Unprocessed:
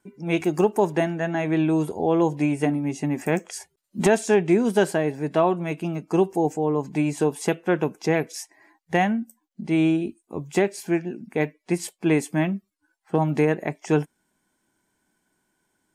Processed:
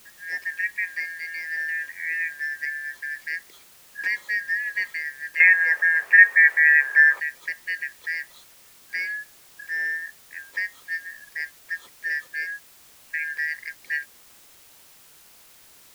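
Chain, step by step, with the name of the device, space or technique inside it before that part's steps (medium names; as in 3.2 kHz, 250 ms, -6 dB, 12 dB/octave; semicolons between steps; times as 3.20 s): split-band scrambled radio (four frequency bands reordered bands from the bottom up 3142; band-pass 330–2900 Hz; white noise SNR 20 dB); 5.40–7.20 s: high-order bell 910 Hz +15.5 dB 2.9 oct; trim -7 dB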